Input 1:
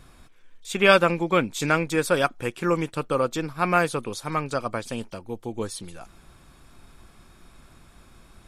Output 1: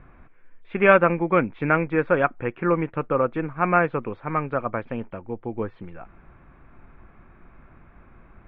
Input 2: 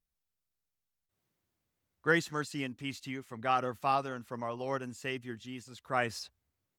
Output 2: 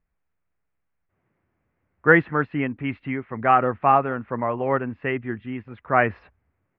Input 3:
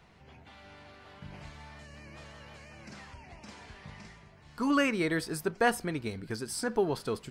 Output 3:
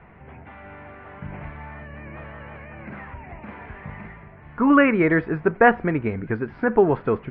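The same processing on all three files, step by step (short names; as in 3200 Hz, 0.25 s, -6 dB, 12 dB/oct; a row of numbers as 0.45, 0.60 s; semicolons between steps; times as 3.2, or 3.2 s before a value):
steep low-pass 2300 Hz 36 dB/oct; normalise peaks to -2 dBFS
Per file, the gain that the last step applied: +1.5, +12.5, +11.0 dB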